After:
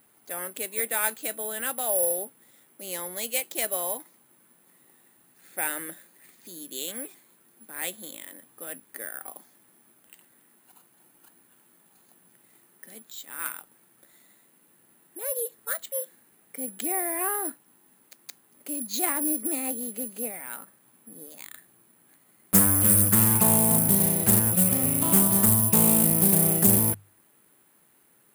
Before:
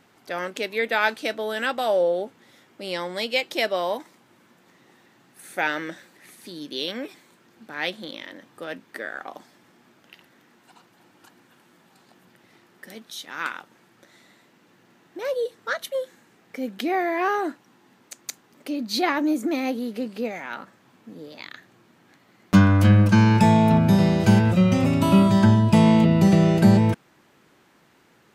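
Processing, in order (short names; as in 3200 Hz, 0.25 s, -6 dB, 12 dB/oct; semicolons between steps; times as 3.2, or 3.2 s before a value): careless resampling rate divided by 4×, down filtered, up zero stuff; notches 50/100/150 Hz; Doppler distortion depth 0.42 ms; gain -8.5 dB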